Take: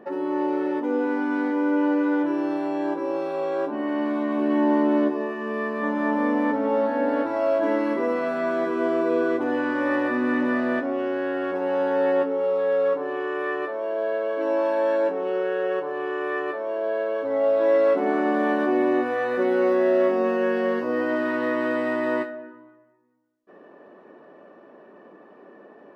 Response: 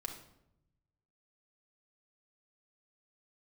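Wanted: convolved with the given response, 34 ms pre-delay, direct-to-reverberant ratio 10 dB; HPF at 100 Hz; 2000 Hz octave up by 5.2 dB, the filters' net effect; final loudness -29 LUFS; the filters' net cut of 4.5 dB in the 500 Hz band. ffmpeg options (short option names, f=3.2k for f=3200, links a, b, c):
-filter_complex "[0:a]highpass=100,equalizer=f=500:t=o:g=-6,equalizer=f=2k:t=o:g=7,asplit=2[a][b];[1:a]atrim=start_sample=2205,adelay=34[c];[b][c]afir=irnorm=-1:irlink=0,volume=-9dB[d];[a][d]amix=inputs=2:normalize=0,volume=-4.5dB"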